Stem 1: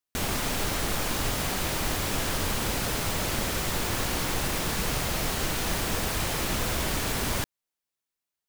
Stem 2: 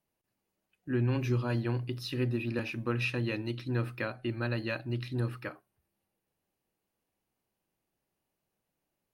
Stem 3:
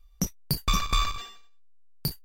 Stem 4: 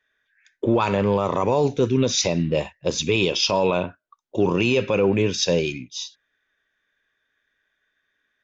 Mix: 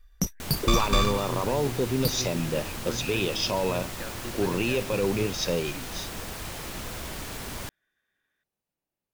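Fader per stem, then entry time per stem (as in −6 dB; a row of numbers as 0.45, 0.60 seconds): −8.0, −6.0, +1.0, −7.0 decibels; 0.25, 0.00, 0.00, 0.00 seconds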